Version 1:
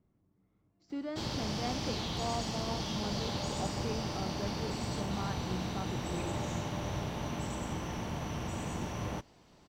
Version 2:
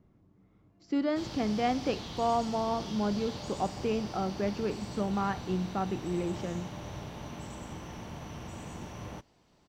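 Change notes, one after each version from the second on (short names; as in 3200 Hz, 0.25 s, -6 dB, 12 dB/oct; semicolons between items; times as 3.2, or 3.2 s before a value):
speech +9.5 dB; background -5.0 dB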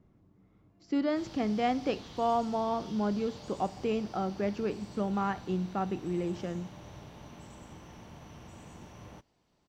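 background -7.0 dB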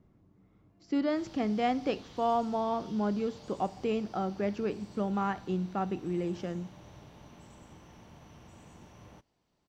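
background -4.0 dB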